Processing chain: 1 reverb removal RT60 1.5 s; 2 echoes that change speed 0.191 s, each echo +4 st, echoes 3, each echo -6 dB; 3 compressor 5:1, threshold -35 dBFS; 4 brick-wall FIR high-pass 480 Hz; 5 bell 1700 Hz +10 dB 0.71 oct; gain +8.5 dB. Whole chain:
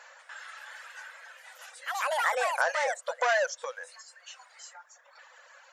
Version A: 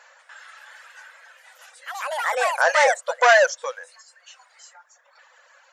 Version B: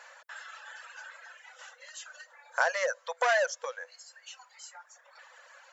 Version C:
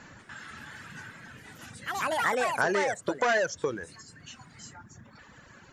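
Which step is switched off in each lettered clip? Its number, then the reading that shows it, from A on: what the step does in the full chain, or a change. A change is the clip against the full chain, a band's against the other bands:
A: 3, mean gain reduction 2.5 dB; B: 2, loudness change -1.5 LU; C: 4, 500 Hz band +2.0 dB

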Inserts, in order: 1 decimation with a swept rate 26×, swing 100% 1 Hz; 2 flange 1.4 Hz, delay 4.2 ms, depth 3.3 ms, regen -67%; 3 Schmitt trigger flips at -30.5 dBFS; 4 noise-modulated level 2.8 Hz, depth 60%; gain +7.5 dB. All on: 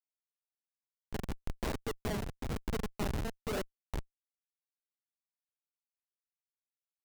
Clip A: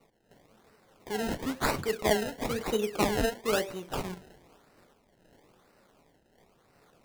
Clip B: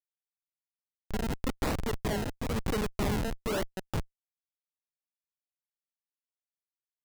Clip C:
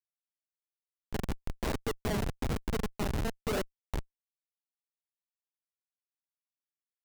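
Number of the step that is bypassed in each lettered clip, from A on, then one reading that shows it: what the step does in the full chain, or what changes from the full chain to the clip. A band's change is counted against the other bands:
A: 3, crest factor change +5.5 dB; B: 2, loudness change +6.0 LU; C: 4, loudness change +3.5 LU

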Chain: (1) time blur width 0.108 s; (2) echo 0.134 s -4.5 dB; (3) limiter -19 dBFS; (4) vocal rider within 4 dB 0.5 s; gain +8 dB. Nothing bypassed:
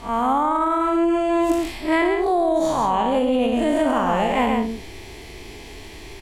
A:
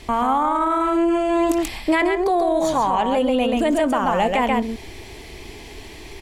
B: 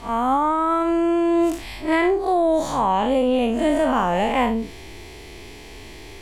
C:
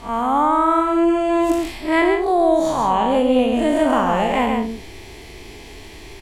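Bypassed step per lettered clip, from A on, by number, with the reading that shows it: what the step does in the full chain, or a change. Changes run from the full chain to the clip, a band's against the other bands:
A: 1, 125 Hz band -2.0 dB; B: 2, momentary loudness spread change +2 LU; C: 3, momentary loudness spread change -15 LU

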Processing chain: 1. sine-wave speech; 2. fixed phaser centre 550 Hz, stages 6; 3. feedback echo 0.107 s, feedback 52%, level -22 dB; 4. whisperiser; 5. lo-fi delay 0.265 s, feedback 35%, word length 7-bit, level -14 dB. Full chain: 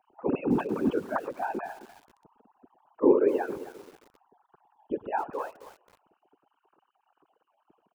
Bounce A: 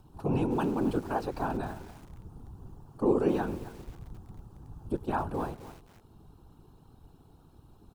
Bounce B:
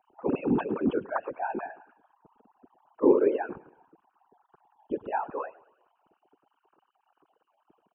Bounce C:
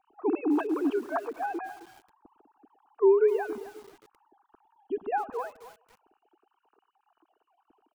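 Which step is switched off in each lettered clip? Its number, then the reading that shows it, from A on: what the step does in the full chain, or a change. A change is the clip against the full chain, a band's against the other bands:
1, 125 Hz band +10.5 dB; 5, momentary loudness spread change -2 LU; 4, 250 Hz band -2.0 dB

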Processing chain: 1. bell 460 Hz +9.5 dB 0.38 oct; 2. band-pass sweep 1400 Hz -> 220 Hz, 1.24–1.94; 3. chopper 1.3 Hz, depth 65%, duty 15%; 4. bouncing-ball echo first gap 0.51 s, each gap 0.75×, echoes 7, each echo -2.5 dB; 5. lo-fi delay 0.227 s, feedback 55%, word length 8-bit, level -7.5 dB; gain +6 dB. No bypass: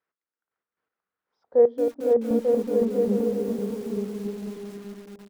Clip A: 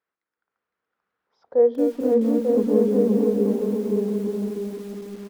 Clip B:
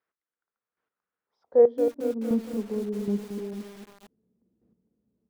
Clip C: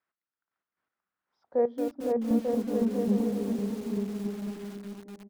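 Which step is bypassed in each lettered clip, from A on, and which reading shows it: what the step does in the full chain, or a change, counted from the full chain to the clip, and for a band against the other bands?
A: 3, momentary loudness spread change -5 LU; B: 4, crest factor change +3.5 dB; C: 1, crest factor change -1.5 dB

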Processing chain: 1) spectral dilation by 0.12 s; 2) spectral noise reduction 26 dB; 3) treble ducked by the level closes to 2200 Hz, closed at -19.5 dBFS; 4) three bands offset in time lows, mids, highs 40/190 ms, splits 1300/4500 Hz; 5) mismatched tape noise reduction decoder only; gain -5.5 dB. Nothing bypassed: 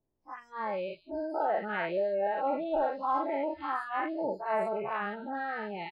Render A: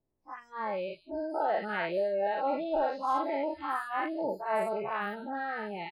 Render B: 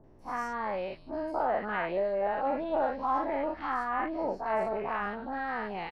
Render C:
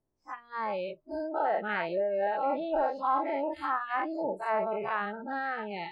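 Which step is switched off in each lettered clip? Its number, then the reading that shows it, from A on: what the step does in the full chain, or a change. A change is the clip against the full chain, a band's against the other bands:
3, 4 kHz band +2.5 dB; 2, momentary loudness spread change -2 LU; 4, 250 Hz band -2.0 dB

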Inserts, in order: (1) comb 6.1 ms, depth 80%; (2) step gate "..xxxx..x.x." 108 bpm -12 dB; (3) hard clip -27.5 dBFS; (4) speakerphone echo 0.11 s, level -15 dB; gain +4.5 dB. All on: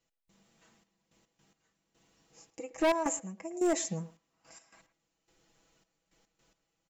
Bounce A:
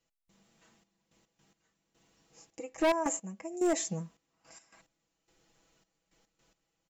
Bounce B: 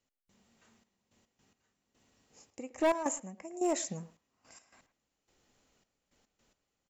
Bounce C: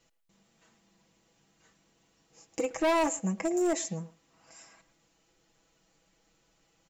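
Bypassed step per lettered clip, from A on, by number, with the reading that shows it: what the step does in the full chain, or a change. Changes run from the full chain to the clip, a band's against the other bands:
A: 4, echo-to-direct -23.5 dB to none; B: 1, 125 Hz band -2.5 dB; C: 2, 8 kHz band -2.5 dB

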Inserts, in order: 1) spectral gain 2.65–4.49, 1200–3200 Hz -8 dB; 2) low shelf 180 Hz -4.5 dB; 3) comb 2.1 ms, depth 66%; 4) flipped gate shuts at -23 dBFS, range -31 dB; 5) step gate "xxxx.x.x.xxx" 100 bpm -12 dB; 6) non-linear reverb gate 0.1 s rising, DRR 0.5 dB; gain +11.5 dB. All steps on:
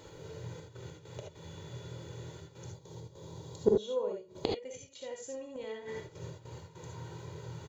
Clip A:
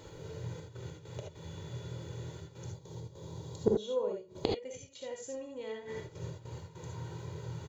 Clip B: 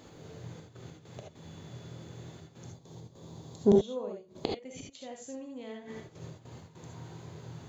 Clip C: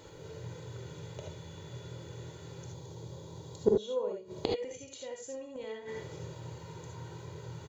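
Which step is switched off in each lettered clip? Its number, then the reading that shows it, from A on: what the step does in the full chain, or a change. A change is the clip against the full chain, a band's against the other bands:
2, 125 Hz band +3.0 dB; 3, 250 Hz band +6.0 dB; 5, momentary loudness spread change -2 LU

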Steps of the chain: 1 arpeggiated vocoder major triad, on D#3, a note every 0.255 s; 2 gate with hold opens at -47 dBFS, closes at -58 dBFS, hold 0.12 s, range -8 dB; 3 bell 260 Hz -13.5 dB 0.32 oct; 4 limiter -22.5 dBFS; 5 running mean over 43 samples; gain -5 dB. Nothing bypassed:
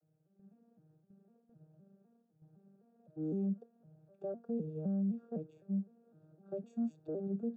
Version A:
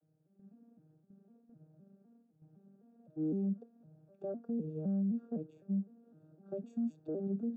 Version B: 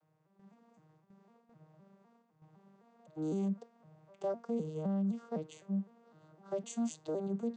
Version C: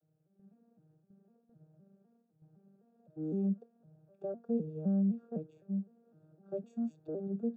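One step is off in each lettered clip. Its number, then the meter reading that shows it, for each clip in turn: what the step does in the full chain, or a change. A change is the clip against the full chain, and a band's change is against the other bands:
3, 1 kHz band -2.0 dB; 5, 1 kHz band +10.0 dB; 4, crest factor change +2.0 dB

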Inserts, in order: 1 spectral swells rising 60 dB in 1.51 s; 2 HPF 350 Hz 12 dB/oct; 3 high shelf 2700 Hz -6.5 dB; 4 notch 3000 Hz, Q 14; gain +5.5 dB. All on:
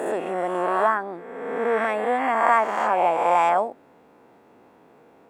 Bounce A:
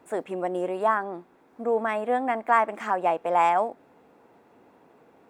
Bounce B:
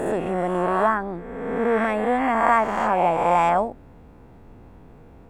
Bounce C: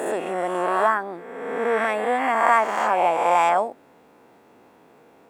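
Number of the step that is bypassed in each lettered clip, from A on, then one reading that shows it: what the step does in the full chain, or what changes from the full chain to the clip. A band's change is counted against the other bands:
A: 1, 250 Hz band +2.5 dB; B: 2, 250 Hz band +6.5 dB; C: 3, 4 kHz band +3.5 dB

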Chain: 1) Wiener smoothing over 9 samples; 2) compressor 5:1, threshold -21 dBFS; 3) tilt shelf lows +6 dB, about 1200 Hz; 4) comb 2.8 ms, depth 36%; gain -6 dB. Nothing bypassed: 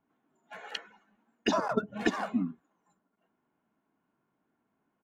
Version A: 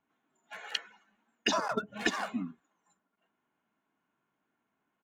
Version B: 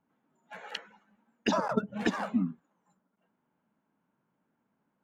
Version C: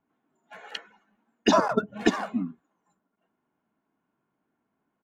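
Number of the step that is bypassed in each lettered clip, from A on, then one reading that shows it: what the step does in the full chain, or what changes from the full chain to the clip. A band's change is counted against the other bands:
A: 3, 8 kHz band +8.0 dB; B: 4, 125 Hz band +4.0 dB; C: 2, mean gain reduction 2.5 dB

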